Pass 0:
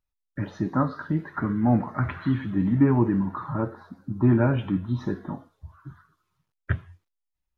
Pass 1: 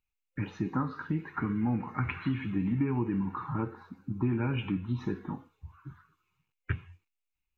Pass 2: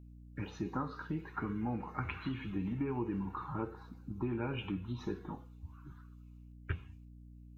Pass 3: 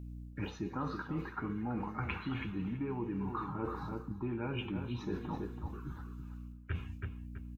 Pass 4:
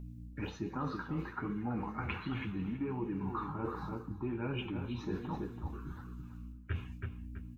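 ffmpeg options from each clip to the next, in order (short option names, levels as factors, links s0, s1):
-af "superequalizer=8b=0.282:12b=3.55:14b=0.708:16b=0.447,acompressor=threshold=0.0794:ratio=6,volume=0.668"
-af "equalizer=f=125:t=o:w=1:g=-10,equalizer=f=250:t=o:w=1:g=-8,equalizer=f=1000:t=o:w=1:g=-4,equalizer=f=2000:t=o:w=1:g=-9,aeval=exprs='val(0)+0.002*(sin(2*PI*60*n/s)+sin(2*PI*2*60*n/s)/2+sin(2*PI*3*60*n/s)/3+sin(2*PI*4*60*n/s)/4+sin(2*PI*5*60*n/s)/5)':c=same,volume=1.26"
-filter_complex "[0:a]asplit=2[s0][s1];[s1]adelay=329,lowpass=f=2900:p=1,volume=0.316,asplit=2[s2][s3];[s3]adelay=329,lowpass=f=2900:p=1,volume=0.27,asplit=2[s4][s5];[s5]adelay=329,lowpass=f=2900:p=1,volume=0.27[s6];[s0][s2][s4][s6]amix=inputs=4:normalize=0,areverse,acompressor=threshold=0.00708:ratio=6,areverse,volume=2.66"
-af "flanger=delay=4.7:depth=9.5:regen=-43:speed=1.3:shape=triangular,volume=1.58"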